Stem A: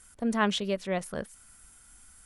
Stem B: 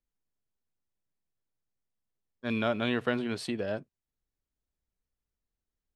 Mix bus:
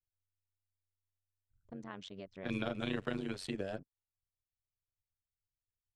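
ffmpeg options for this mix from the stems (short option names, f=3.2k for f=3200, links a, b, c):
-filter_complex "[0:a]lowpass=f=7.1k:w=0.5412,lowpass=f=7.1k:w=1.3066,acompressor=threshold=-36dB:ratio=4,adelay=1500,volume=-6dB[a];[1:a]acrossover=split=370|3000[b][c][d];[c]acompressor=threshold=-35dB:ratio=2.5[e];[b][e][d]amix=inputs=3:normalize=0,volume=-2.5dB[f];[a][f]amix=inputs=2:normalize=0,anlmdn=0.000398,tremolo=f=94:d=0.857"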